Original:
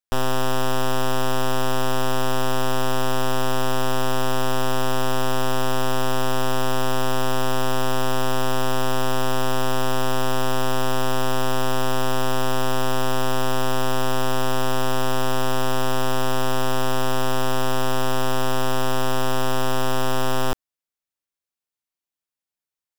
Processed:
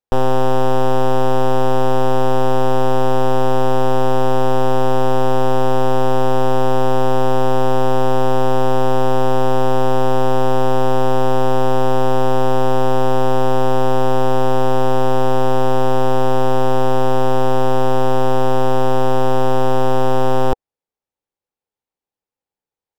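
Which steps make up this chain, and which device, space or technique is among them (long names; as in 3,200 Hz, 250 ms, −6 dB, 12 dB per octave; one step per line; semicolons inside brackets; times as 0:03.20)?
low-shelf EQ 420 Hz +8.5 dB
inside a helmet (high-shelf EQ 5,500 Hz −8.5 dB; hollow resonant body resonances 480/810 Hz, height 11 dB, ringing for 20 ms)
level −1.5 dB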